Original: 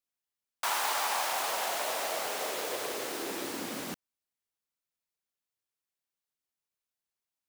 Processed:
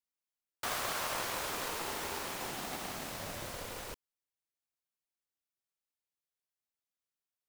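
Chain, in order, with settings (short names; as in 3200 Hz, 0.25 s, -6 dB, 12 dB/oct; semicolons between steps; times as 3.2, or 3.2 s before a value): polarity switched at an audio rate 240 Hz; gain -5.5 dB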